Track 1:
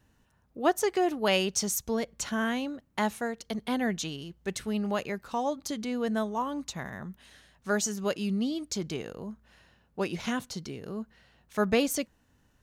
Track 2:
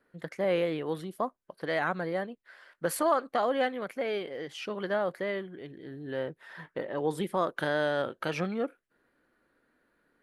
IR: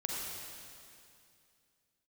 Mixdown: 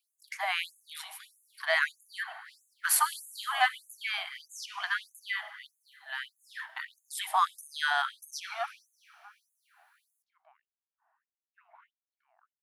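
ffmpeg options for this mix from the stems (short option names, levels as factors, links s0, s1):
-filter_complex "[0:a]flanger=delay=7.5:depth=9.3:regen=-86:speed=1.3:shape=triangular,lowpass=f=1100:w=0.5412,lowpass=f=1100:w=1.3066,adelay=1550,volume=0.631[s0];[1:a]highshelf=f=9400:g=6,volume=1.26,asplit=3[s1][s2][s3];[s2]volume=0.188[s4];[s3]apad=whole_len=625285[s5];[s0][s5]sidechaincompress=threshold=0.00794:ratio=8:attack=16:release=928[s6];[2:a]atrim=start_sample=2205[s7];[s4][s7]afir=irnorm=-1:irlink=0[s8];[s6][s1][s8]amix=inputs=3:normalize=0,dynaudnorm=f=190:g=3:m=1.68,afftfilt=real='re*gte(b*sr/1024,610*pow(6400/610,0.5+0.5*sin(2*PI*1.6*pts/sr)))':imag='im*gte(b*sr/1024,610*pow(6400/610,0.5+0.5*sin(2*PI*1.6*pts/sr)))':win_size=1024:overlap=0.75"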